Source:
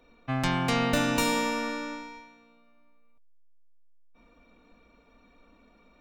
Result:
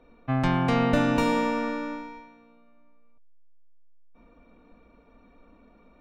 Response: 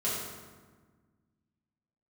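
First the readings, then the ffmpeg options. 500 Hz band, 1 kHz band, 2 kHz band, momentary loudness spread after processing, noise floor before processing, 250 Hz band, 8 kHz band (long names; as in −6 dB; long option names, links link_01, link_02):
+3.5 dB, +2.5 dB, −1.0 dB, 13 LU, −61 dBFS, +4.5 dB, −10.5 dB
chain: -af "lowpass=frequency=1200:poles=1,volume=4.5dB"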